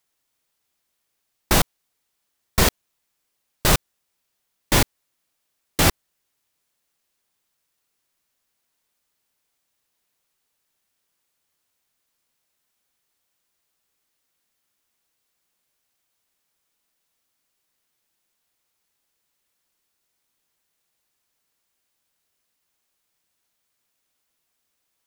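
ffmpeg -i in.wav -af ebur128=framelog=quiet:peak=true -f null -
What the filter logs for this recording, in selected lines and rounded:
Integrated loudness:
  I:         -21.4 LUFS
  Threshold: -31.6 LUFS
Loudness range:
  LRA:         4.7 LU
  Threshold: -45.7 LUFS
  LRA low:   -29.0 LUFS
  LRA high:  -24.4 LUFS
True peak:
  Peak:       -1.7 dBFS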